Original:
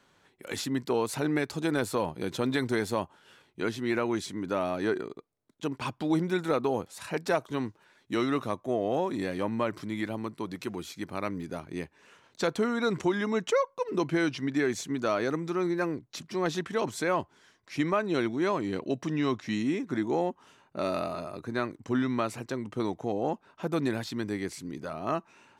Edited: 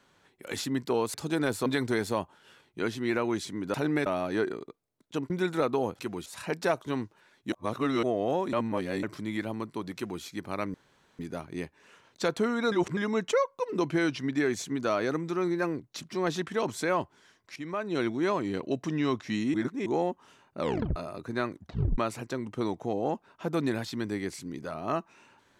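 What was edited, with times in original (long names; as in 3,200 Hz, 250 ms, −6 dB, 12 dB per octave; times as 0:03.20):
0:01.14–0:01.46: move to 0:04.55
0:01.98–0:02.47: remove
0:05.79–0:06.21: remove
0:08.16–0:08.67: reverse
0:09.17–0:09.67: reverse
0:10.60–0:10.87: duplicate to 0:06.90
0:11.38: splice in room tone 0.45 s
0:12.91–0:13.16: reverse
0:17.75–0:18.26: fade in, from −15.5 dB
0:19.73–0:20.05: reverse
0:20.79: tape stop 0.36 s
0:21.74: tape stop 0.43 s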